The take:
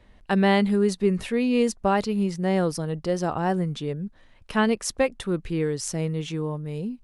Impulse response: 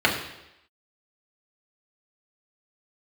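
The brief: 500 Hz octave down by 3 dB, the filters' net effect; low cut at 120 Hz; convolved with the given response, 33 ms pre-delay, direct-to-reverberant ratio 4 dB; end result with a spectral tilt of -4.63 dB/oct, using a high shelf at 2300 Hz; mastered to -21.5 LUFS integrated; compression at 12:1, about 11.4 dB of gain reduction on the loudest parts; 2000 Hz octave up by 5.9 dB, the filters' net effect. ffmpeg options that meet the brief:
-filter_complex "[0:a]highpass=120,equalizer=f=500:t=o:g=-4,equalizer=f=2k:t=o:g=5.5,highshelf=f=2.3k:g=3.5,acompressor=threshold=-28dB:ratio=12,asplit=2[a][b];[1:a]atrim=start_sample=2205,adelay=33[c];[b][c]afir=irnorm=-1:irlink=0,volume=-22.5dB[d];[a][d]amix=inputs=2:normalize=0,volume=10dB"

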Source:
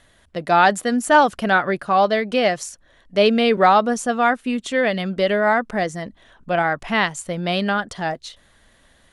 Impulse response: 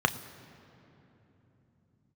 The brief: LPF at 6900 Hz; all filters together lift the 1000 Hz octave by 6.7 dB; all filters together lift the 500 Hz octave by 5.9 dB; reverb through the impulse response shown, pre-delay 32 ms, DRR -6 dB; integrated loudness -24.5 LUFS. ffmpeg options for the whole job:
-filter_complex "[0:a]lowpass=6.9k,equalizer=f=500:t=o:g=5,equalizer=f=1k:t=o:g=7,asplit=2[a][b];[1:a]atrim=start_sample=2205,adelay=32[c];[b][c]afir=irnorm=-1:irlink=0,volume=-6.5dB[d];[a][d]amix=inputs=2:normalize=0,volume=-18dB"

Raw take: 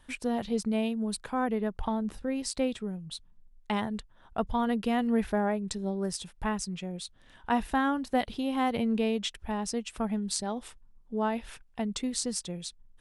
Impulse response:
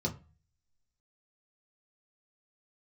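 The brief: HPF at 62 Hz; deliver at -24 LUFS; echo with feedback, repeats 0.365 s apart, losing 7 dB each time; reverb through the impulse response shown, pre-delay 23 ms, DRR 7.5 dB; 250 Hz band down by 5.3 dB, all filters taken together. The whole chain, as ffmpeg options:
-filter_complex "[0:a]highpass=62,equalizer=f=250:t=o:g=-6,aecho=1:1:365|730|1095|1460|1825:0.447|0.201|0.0905|0.0407|0.0183,asplit=2[a][b];[1:a]atrim=start_sample=2205,adelay=23[c];[b][c]afir=irnorm=-1:irlink=0,volume=-11.5dB[d];[a][d]amix=inputs=2:normalize=0,volume=7dB"

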